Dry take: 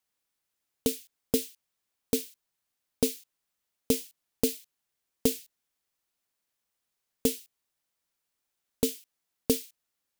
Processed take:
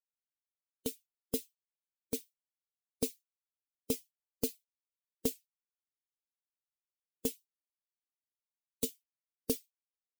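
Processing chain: expander on every frequency bin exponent 2; treble shelf 5.4 kHz +4.5 dB; 7.37–8.85 s: three bands expanded up and down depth 40%; trim -6.5 dB

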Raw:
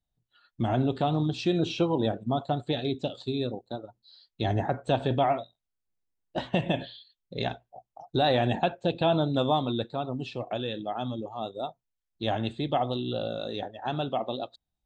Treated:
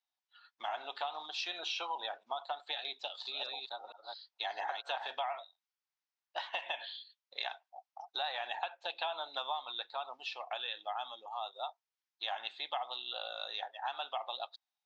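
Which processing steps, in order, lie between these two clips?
3.01–5.11 s: chunks repeated in reverse 228 ms, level -3 dB; Chebyshev band-pass 840–5700 Hz, order 3; compression 6:1, threshold -36 dBFS, peak gain reduction 11 dB; trim +2 dB

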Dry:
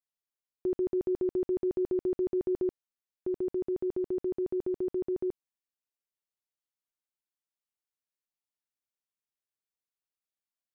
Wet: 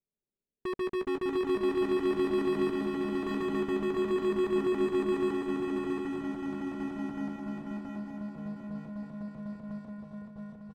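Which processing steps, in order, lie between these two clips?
steep low-pass 510 Hz 36 dB/octave; comb 5 ms, depth 61%; in parallel at +3 dB: peak limiter -33.5 dBFS, peak gain reduction 12 dB; on the sum: hard clipper -34 dBFS, distortion -8 dB; on a send: feedback delay 156 ms, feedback 29%, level -8.5 dB; on the sum: ever faster or slower copies 198 ms, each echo -5 st, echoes 3, each echo -6 dB; shuffle delay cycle 901 ms, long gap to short 3:1, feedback 37%, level -4 dB; trim +2.5 dB

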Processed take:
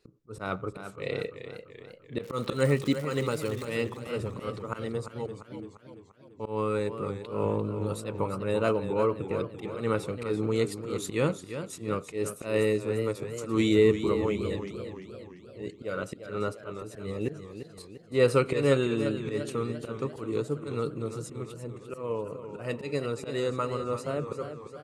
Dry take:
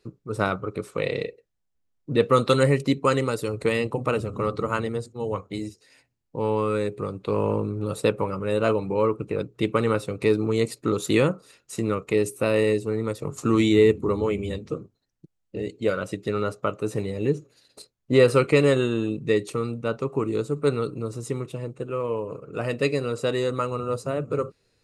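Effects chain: speakerphone echo 90 ms, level -25 dB; 2.22–3.74 s: crackle 270 per s -30 dBFS; 5.26–6.40 s: cascade formant filter i; slow attack 145 ms; modulated delay 343 ms, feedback 53%, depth 90 cents, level -10 dB; trim -4 dB

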